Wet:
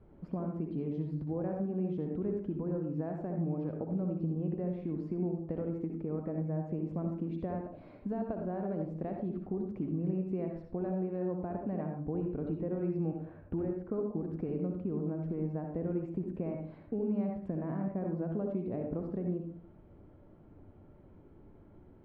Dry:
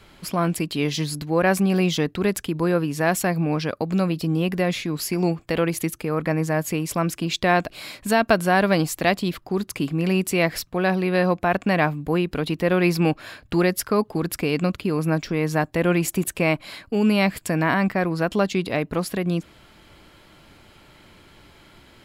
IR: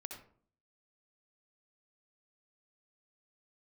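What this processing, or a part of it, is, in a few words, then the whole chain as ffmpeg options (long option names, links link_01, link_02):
television next door: -filter_complex "[0:a]acompressor=threshold=-27dB:ratio=4,lowpass=520[link_01];[1:a]atrim=start_sample=2205[link_02];[link_01][link_02]afir=irnorm=-1:irlink=0,asettb=1/sr,asplit=3[link_03][link_04][link_05];[link_03]atrim=end=13.254[link_06];[link_04]atrim=start=13.25:end=13.94,asetpts=PTS-STARTPTS,afade=type=in:duration=0.004:curve=qsin,afade=type=out:start_time=0.686:duration=0.004:curve=qsin,lowpass=2700[link_07];[link_05]atrim=start=13.936[link_08];[link_06][link_07]acrossfade=duration=0.004:curve1=hsin:curve2=qsin[link_09];[link_09][link_08]acrossfade=duration=0.004:curve1=qsin:curve2=hsin"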